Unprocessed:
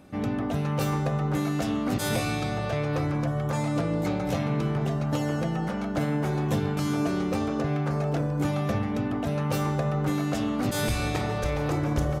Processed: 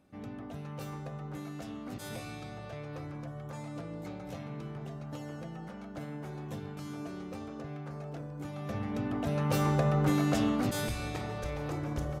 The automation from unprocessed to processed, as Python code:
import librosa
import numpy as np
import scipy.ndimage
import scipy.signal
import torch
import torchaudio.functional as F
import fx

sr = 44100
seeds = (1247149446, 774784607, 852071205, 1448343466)

y = fx.gain(x, sr, db=fx.line((8.51, -14.5), (8.85, -7.0), (9.74, -0.5), (10.48, -0.5), (10.95, -9.0)))